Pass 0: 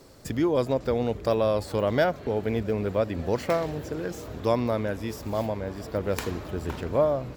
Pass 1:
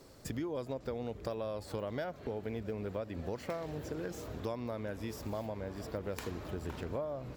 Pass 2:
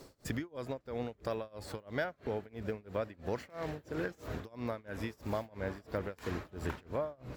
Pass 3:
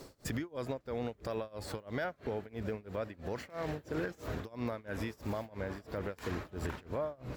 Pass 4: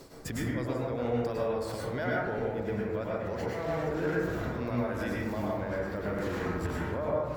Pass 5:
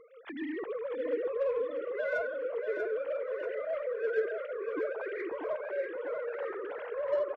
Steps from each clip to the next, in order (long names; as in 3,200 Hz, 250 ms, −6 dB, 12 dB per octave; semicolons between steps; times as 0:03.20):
downward compressor, threshold −30 dBFS, peak gain reduction 12 dB; level −5 dB
speech leveller 0.5 s; amplitude tremolo 3 Hz, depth 96%; dynamic equaliser 1,700 Hz, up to +7 dB, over −60 dBFS, Q 1.1; level +3 dB
brickwall limiter −29.5 dBFS, peak gain reduction 8 dB; level +3 dB
dense smooth reverb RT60 1.2 s, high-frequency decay 0.3×, pre-delay 90 ms, DRR −5.5 dB
three sine waves on the formant tracks; in parallel at −5 dB: soft clipping −31.5 dBFS, distortion −9 dB; on the sum: repeating echo 639 ms, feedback 45%, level −6.5 dB; level −5.5 dB